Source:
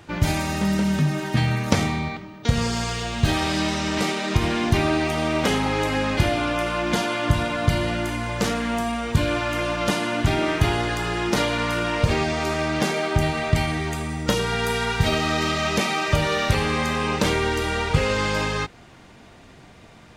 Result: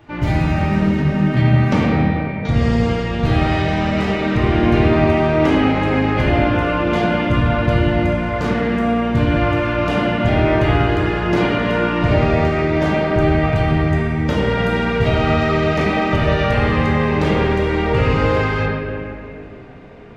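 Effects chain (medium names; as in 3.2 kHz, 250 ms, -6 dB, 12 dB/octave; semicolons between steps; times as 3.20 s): peaking EQ 11 kHz -15 dB 2 oct; reverberation RT60 2.8 s, pre-delay 3 ms, DRR -7.5 dB; trim -2 dB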